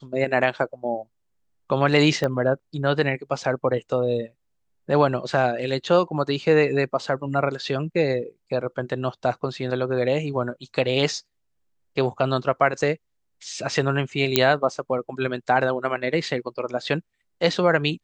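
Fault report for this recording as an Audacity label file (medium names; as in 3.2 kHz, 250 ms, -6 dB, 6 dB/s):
2.240000	2.240000	pop -12 dBFS
14.360000	14.360000	pop -1 dBFS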